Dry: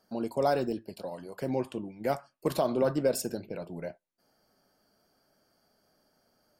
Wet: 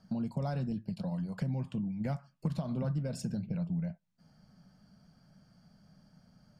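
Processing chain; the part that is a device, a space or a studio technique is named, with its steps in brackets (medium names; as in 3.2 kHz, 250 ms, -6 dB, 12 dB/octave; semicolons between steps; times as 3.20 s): jukebox (low-pass 7 kHz 12 dB/octave; resonant low shelf 250 Hz +12.5 dB, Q 3; compression 4:1, threshold -35 dBFS, peak gain reduction 17 dB); trim +1.5 dB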